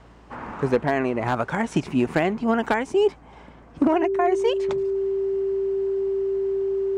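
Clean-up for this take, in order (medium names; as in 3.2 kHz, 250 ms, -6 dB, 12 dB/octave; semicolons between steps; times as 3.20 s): clip repair -11.5 dBFS; de-hum 56.8 Hz, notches 5; band-stop 390 Hz, Q 30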